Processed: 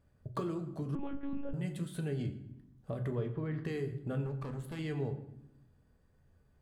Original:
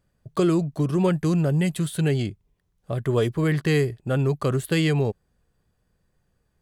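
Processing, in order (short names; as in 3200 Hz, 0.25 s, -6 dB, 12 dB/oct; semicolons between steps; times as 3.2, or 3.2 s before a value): high shelf 2400 Hz -8.5 dB; compressor 4:1, threshold -38 dBFS, peak gain reduction 17.5 dB; 3.11–3.64 air absorption 220 m; 4.26–4.79 tube stage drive 37 dB, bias 0.6; reverb RT60 0.85 s, pre-delay 6 ms, DRR 5 dB; 0.95–1.54 monotone LPC vocoder at 8 kHz 280 Hz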